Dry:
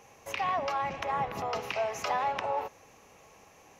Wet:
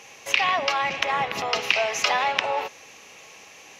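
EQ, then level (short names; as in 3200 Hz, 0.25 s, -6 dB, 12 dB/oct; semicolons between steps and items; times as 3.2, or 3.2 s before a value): weighting filter D; +5.5 dB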